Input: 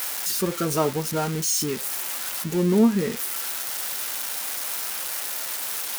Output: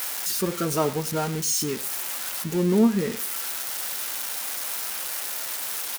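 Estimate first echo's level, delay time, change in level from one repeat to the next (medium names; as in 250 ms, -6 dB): -18.5 dB, 105 ms, no regular repeats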